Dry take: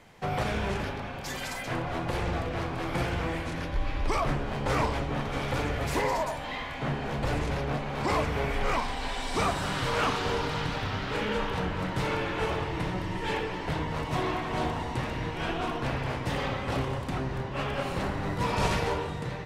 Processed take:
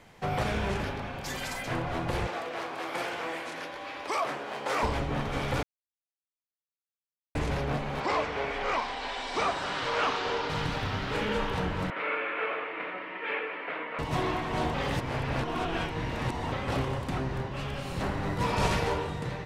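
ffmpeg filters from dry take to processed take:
ffmpeg -i in.wav -filter_complex "[0:a]asettb=1/sr,asplit=3[link_01][link_02][link_03];[link_01]atrim=end=2.274[link_04];[link_02]atrim=start=2.27:end=4.83,asetpts=PTS-STARTPTS,afade=type=in:duration=0.004:curve=qsin,afade=type=out:start_time=2.556:duration=0.004:curve=qsin,highpass=440[link_05];[link_03]atrim=start=4.826[link_06];[link_04][link_05]acrossfade=duration=0.004:curve1=hsin:curve2=qsin[link_07];[link_07][link_06]acrossfade=duration=0.004:curve1=qsin:curve2=hsin,asettb=1/sr,asplit=3[link_08][link_09][link_10];[link_08]atrim=end=8.004[link_11];[link_09]atrim=start=8:end=10.5,asetpts=PTS-STARTPTS,afade=type=in:duration=0.004:curve=qsin,afade=type=out:start_time=2.496:duration=0.004:curve=qsin,acrossover=split=300 6700:gain=0.2 1 0.1[link_12][link_13][link_14];[link_12][link_13][link_14]amix=inputs=3:normalize=0[link_15];[link_10]atrim=start=10.496[link_16];[link_11][link_15]acrossfade=duration=0.004:curve1=hsin:curve2=qsin[link_17];[link_17][link_16]acrossfade=duration=0.004:curve1=qsin:curve2=hsin,asettb=1/sr,asplit=3[link_18][link_19][link_20];[link_18]atrim=end=11.904[link_21];[link_19]atrim=start=11.9:end=13.99,asetpts=PTS-STARTPTS,afade=type=in:duration=0.004:curve=qsin,afade=type=out:start_time=2.086:duration=0.004:curve=qsin,highpass=frequency=330:width=0.5412,highpass=frequency=330:width=1.3066,equalizer=frequency=360:width_type=q:width=4:gain=-9,equalizer=frequency=860:width_type=q:width=4:gain=-9,equalizer=frequency=1300:width_type=q:width=4:gain=5,equalizer=frequency=2300:width_type=q:width=4:gain=7,lowpass=frequency=2700:width=0.5412,lowpass=frequency=2700:width=1.3066[link_22];[link_20]atrim=start=13.986[link_23];[link_21][link_22]acrossfade=duration=0.004:curve1=hsin:curve2=qsin[link_24];[link_24][link_23]acrossfade=duration=0.004:curve1=qsin:curve2=hsin,asettb=1/sr,asplit=3[link_25][link_26][link_27];[link_25]atrim=end=17.474[link_28];[link_26]atrim=start=17.47:end=18.01,asetpts=PTS-STARTPTS,afade=type=in:duration=0.004:curve=qsin,afade=type=out:start_time=0.536:duration=0.004:curve=qsin,acrossover=split=210|3000[link_29][link_30][link_31];[link_30]acompressor=threshold=-36dB:ratio=6:attack=3.2:release=140:knee=2.83:detection=peak[link_32];[link_29][link_32][link_31]amix=inputs=3:normalize=0[link_33];[link_27]atrim=start=18.006[link_34];[link_28][link_33]acrossfade=duration=0.004:curve1=hsin:curve2=qsin[link_35];[link_35][link_34]acrossfade=duration=0.004:curve1=qsin:curve2=hsin,asplit=5[link_36][link_37][link_38][link_39][link_40];[link_36]atrim=end=5.63,asetpts=PTS-STARTPTS,afade=type=out:start_time=5.626:duration=0.004:curve=hsin[link_41];[link_37]atrim=start=5.63:end=7.35,asetpts=PTS-STARTPTS,volume=0[link_42];[link_38]atrim=start=7.35:end=14.742,asetpts=PTS-STARTPTS,afade=type=in:duration=0.004:curve=hsin[link_43];[link_39]atrim=start=14.738:end=16.522,asetpts=PTS-STARTPTS,areverse[link_44];[link_40]atrim=start=16.518[link_45];[link_41][link_42][link_43]concat=n=3:v=0:a=1[link_46];[link_46][link_44]acrossfade=duration=0.004:curve1=hsin:curve2=hsin[link_47];[link_47][link_45]acrossfade=duration=0.004:curve1=hsin:curve2=hsin" out.wav

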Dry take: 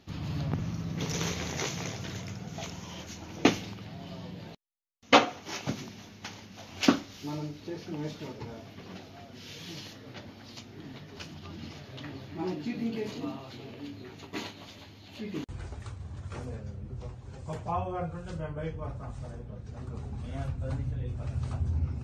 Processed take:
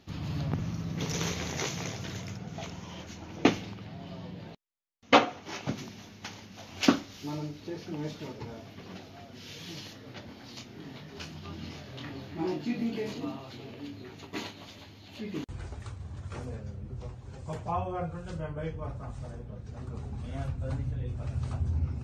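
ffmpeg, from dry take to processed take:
ffmpeg -i in.wav -filter_complex "[0:a]asettb=1/sr,asplit=3[link_01][link_02][link_03];[link_01]atrim=end=2.374[link_04];[link_02]atrim=start=2.37:end=5.78,asetpts=PTS-STARTPTS,afade=type=in:duration=0.004:curve=qsin,afade=type=out:start_time=3.406:duration=0.004:curve=qsin,highshelf=frequency=5100:gain=-8.5[link_05];[link_03]atrim=start=5.776[link_06];[link_04][link_05]acrossfade=duration=0.004:curve1=hsin:curve2=qsin[link_07];[link_07][link_06]acrossfade=duration=0.004:curve1=qsin:curve2=hsin,asettb=1/sr,asplit=3[link_08][link_09][link_10];[link_08]atrim=end=10.264[link_11];[link_09]atrim=start=10.26:end=13.13,asetpts=PTS-STARTPTS,afade=type=in:duration=0.004:curve=qsin,afade=type=out:start_time=2.866:duration=0.004:curve=qsin,asplit=2[link_12][link_13];[link_13]adelay=25,volume=-4.5dB[link_14];[link_12][link_14]amix=inputs=2:normalize=0,atrim=end_sample=126567[link_15];[link_10]atrim=start=13.126[link_16];[link_11][link_15]acrossfade=duration=0.004:curve1=hsin:curve2=qsin[link_17];[link_17][link_16]acrossfade=duration=0.004:curve1=qsin:curve2=hsin" out.wav

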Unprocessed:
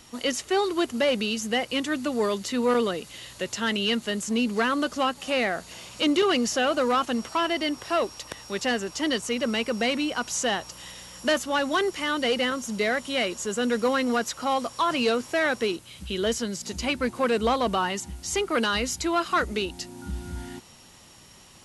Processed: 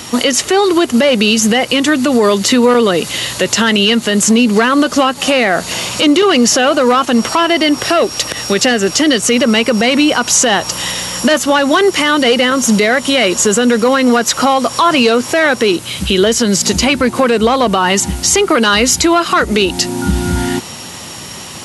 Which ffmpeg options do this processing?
ffmpeg -i in.wav -filter_complex "[0:a]asettb=1/sr,asplit=3[link_01][link_02][link_03];[link_01]atrim=end=7.794[link_04];[link_02]atrim=start=7.79:end=9.34,asetpts=PTS-STARTPTS,afade=type=in:duration=0.004:curve=qsin,afade=type=out:start_time=1.546:duration=0.004:curve=qsin,equalizer=frequency=960:width_type=o:width=0.33:gain=-8[link_05];[link_03]atrim=start=9.336[link_06];[link_04][link_05]acrossfade=duration=0.004:curve1=hsin:curve2=qsin[link_07];[link_07][link_06]acrossfade=duration=0.004:curve1=qsin:curve2=hsin,highpass=86,acompressor=threshold=-29dB:ratio=6,alimiter=level_in=24dB:limit=-1dB:release=50:level=0:latency=1,volume=-1dB" out.wav

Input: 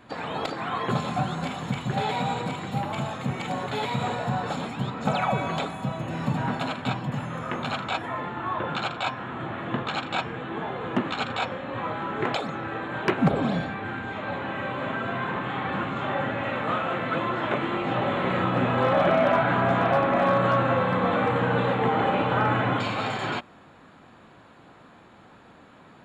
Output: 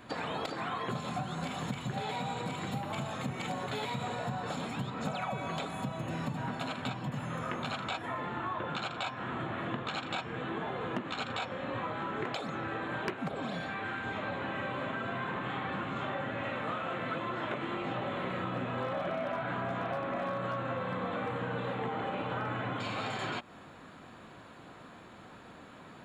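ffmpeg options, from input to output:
ffmpeg -i in.wav -filter_complex "[0:a]asettb=1/sr,asplit=3[link_01][link_02][link_03];[link_01]atrim=end=13.174[link_04];[link_02]atrim=start=13.17:end=14.06,asetpts=PTS-STARTPTS,afade=type=in:duration=0.004:curve=qsin,afade=type=out:start_time=0.886:duration=0.004:curve=qsin,lowshelf=frequency=410:gain=-8[link_05];[link_03]atrim=start=14.056[link_06];[link_04][link_05]acrossfade=duration=0.004:curve1=hsin:curve2=qsin[link_07];[link_07][link_06]acrossfade=duration=0.004:curve1=qsin:curve2=hsin,highshelf=frequency=5600:gain=5.5,bandreject=frequency=840:width=24,acompressor=threshold=-33dB:ratio=6" out.wav

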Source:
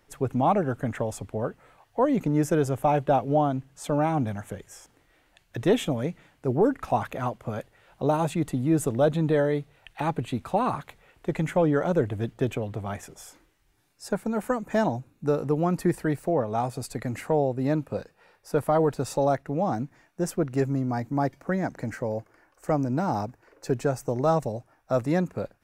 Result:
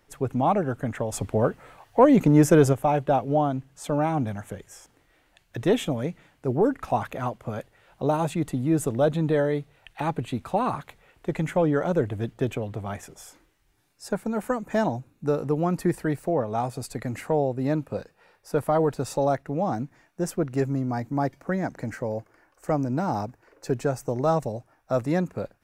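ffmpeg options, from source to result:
ffmpeg -i in.wav -filter_complex "[0:a]asplit=3[link_01][link_02][link_03];[link_01]afade=type=out:start_time=1.12:duration=0.02[link_04];[link_02]acontrast=86,afade=type=in:start_time=1.12:duration=0.02,afade=type=out:start_time=2.72:duration=0.02[link_05];[link_03]afade=type=in:start_time=2.72:duration=0.02[link_06];[link_04][link_05][link_06]amix=inputs=3:normalize=0" out.wav

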